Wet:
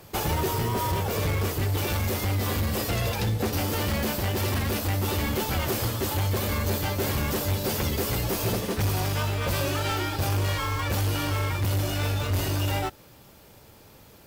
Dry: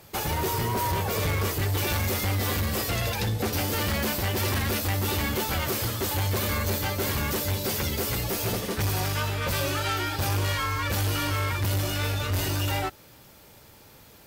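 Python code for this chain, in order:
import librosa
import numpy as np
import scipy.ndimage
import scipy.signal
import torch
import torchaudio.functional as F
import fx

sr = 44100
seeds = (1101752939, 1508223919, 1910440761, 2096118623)

p1 = fx.sample_hold(x, sr, seeds[0], rate_hz=2200.0, jitter_pct=0)
p2 = x + (p1 * librosa.db_to_amplitude(-6.0))
p3 = fx.rider(p2, sr, range_db=10, speed_s=0.5)
y = p3 * librosa.db_to_amplitude(-2.0)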